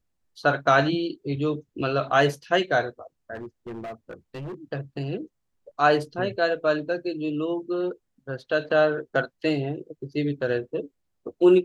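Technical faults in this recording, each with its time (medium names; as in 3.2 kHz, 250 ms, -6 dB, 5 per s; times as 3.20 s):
3.34–4.54 s: clipped -32 dBFS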